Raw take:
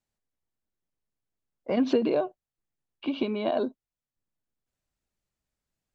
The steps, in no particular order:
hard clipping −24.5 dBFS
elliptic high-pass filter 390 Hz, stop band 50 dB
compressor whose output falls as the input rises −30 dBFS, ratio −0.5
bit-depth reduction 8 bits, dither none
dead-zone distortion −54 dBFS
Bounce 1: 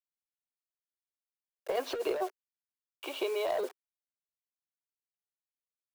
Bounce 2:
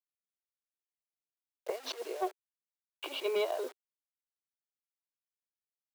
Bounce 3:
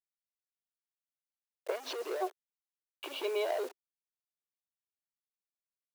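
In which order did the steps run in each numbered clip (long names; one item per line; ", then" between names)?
dead-zone distortion, then bit-depth reduction, then elliptic high-pass filter, then hard clipping, then compressor whose output falls as the input rises
compressor whose output falls as the input rises, then dead-zone distortion, then bit-depth reduction, then elliptic high-pass filter, then hard clipping
hard clipping, then compressor whose output falls as the input rises, then dead-zone distortion, then bit-depth reduction, then elliptic high-pass filter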